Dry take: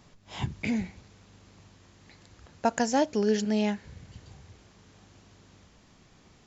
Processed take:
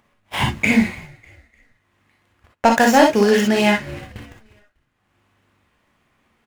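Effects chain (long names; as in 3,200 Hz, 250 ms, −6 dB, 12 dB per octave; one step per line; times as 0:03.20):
running median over 9 samples
noise gate −46 dBFS, range −49 dB
drawn EQ curve 270 Hz 0 dB, 2,200 Hz +11 dB, 3,900 Hz +7 dB
in parallel at −0.5 dB: downward compressor, threshold −40 dBFS, peak gain reduction 23.5 dB
on the sum: leveller curve on the samples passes 1
upward compression, threshold −44 dBFS
echo with shifted repeats 299 ms, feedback 41%, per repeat −70 Hz, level −23 dB
reverb whose tail is shaped and stops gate 80 ms rising, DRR 1 dB
level +3 dB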